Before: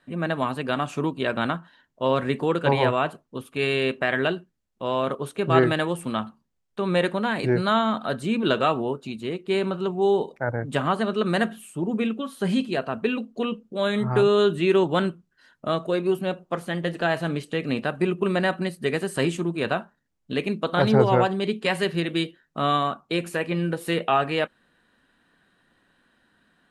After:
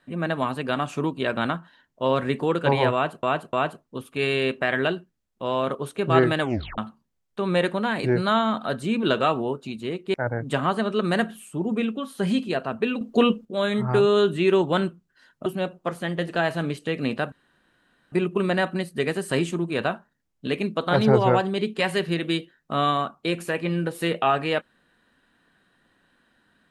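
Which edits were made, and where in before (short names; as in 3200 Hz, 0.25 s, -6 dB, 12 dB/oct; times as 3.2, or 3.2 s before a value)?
2.93–3.23 loop, 3 plays
5.81 tape stop 0.37 s
9.54–10.36 cut
13.23–13.67 gain +8.5 dB
15.68–16.12 cut
17.98 insert room tone 0.80 s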